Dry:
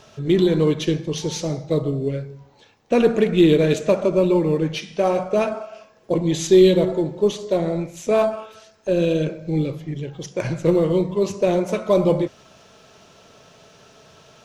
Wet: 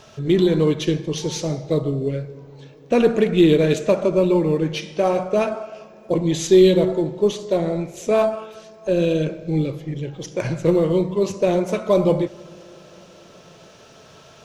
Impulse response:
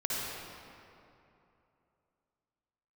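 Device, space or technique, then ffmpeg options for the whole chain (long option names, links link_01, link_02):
ducked reverb: -filter_complex "[0:a]asplit=3[link_01][link_02][link_03];[1:a]atrim=start_sample=2205[link_04];[link_02][link_04]afir=irnorm=-1:irlink=0[link_05];[link_03]apad=whole_len=636830[link_06];[link_05][link_06]sidechaincompress=threshold=-31dB:ratio=8:attack=16:release=1390,volume=-12dB[link_07];[link_01][link_07]amix=inputs=2:normalize=0"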